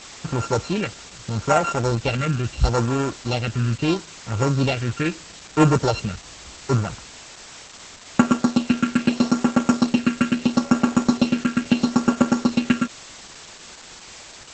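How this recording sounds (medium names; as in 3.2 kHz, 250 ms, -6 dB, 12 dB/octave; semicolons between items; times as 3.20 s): a buzz of ramps at a fixed pitch in blocks of 32 samples; phasing stages 4, 0.76 Hz, lowest notch 790–4500 Hz; a quantiser's noise floor 6-bit, dither triangular; Opus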